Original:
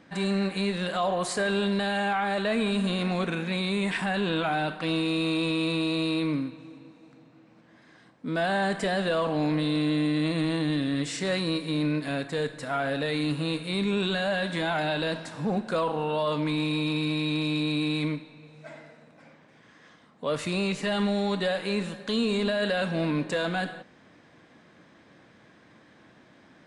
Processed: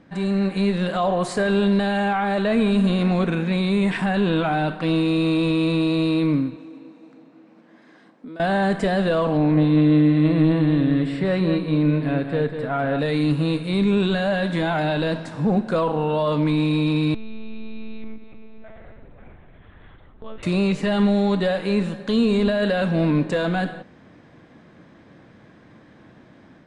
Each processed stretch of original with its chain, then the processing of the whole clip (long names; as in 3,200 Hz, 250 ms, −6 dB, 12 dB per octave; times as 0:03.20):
0:06.56–0:08.40: high-pass filter 210 Hz 24 dB per octave + downward compressor 8 to 1, threshold −42 dBFS
0:09.37–0:12.99: moving average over 7 samples + single-tap delay 198 ms −8 dB
0:17.14–0:20.43: one-pitch LPC vocoder at 8 kHz 220 Hz + downward compressor 2.5 to 1, threshold −46 dBFS
whole clip: automatic gain control gain up to 4 dB; spectral tilt −2 dB per octave